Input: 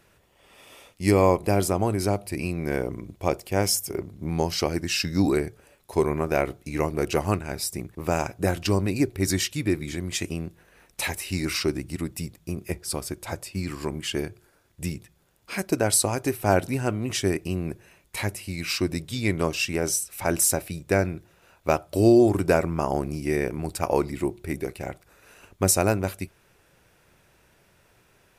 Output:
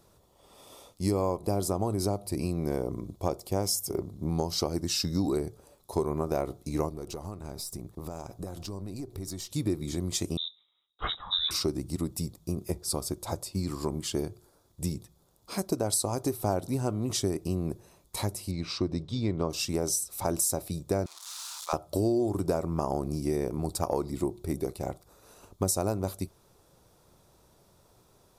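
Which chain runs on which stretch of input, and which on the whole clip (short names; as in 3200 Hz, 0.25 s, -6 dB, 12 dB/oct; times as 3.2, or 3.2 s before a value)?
6.89–9.52 half-wave gain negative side -3 dB + compressor 16:1, threshold -33 dBFS
10.37–11.51 inverted band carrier 3800 Hz + three-band expander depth 100%
18.51–19.5 air absorption 150 m + notch 7200 Hz, Q 14
21.06–21.73 switching spikes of -20 dBFS + Chebyshev high-pass 1000 Hz, order 3 + air absorption 77 m
whole clip: band shelf 2100 Hz -13 dB 1.2 oct; compressor 4:1, threshold -25 dBFS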